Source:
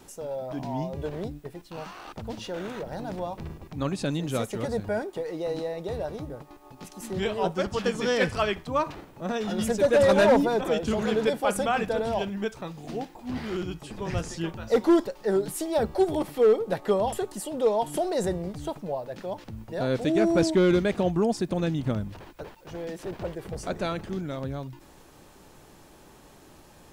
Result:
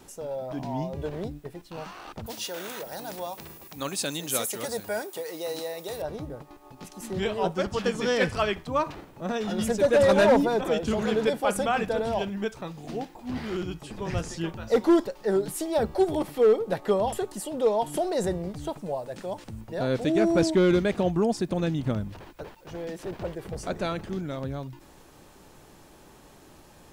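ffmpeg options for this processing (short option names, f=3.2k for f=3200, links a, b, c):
-filter_complex "[0:a]asettb=1/sr,asplit=3[a][b][c];[a]atrim=end=2.264[d];[b]atrim=start=2.26:end=6.02,asetpts=PTS-STARTPTS,afade=t=in:d=0.004:c=qsin,afade=t=out:st=3.756:d=0.004:c=qsin,aemphasis=mode=production:type=riaa[e];[c]atrim=start=6.016[f];[d][e]acrossfade=d=0.004:c1=hsin:c2=qsin[g];[g][f]acrossfade=d=0.004:c1=qsin:c2=hsin,asettb=1/sr,asplit=3[h][i][j];[h]atrim=end=18.774[k];[i]atrim=start=18.77:end=19.61,asetpts=PTS-STARTPTS,afade=t=in:d=0.004:c=qsin,afade=t=out:st=0.836:d=0.004:c=qsin,equalizer=f=8.5k:w=1.5:g=9.5[l];[j]atrim=start=19.606[m];[k][l]acrossfade=d=0.004:c1=hsin:c2=qsin[n];[n][m]acrossfade=d=0.004:c1=qsin:c2=hsin"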